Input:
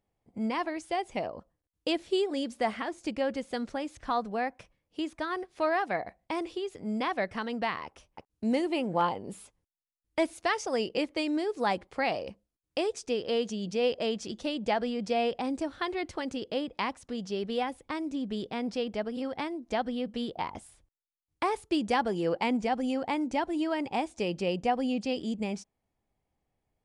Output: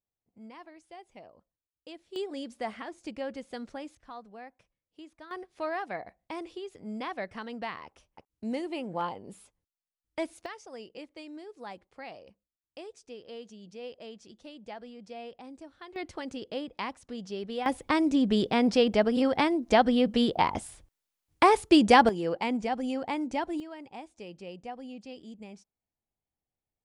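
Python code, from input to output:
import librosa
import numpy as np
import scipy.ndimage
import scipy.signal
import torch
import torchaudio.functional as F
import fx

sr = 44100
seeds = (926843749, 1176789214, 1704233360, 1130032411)

y = fx.gain(x, sr, db=fx.steps((0.0, -17.0), (2.16, -6.0), (3.95, -15.0), (5.31, -5.5), (10.46, -14.5), (15.96, -3.5), (17.66, 9.0), (22.09, -1.5), (23.6, -13.0)))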